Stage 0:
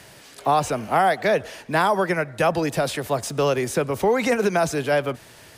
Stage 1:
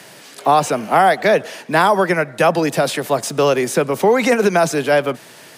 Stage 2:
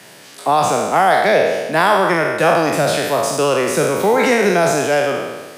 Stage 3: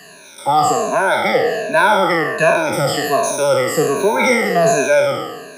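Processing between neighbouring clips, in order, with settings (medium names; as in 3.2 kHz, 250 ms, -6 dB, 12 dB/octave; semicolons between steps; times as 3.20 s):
high-pass 150 Hz 24 dB/octave; trim +6 dB
spectral sustain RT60 1.33 s; trim -3 dB
drifting ripple filter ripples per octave 1.5, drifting -1.3 Hz, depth 24 dB; trim -5.5 dB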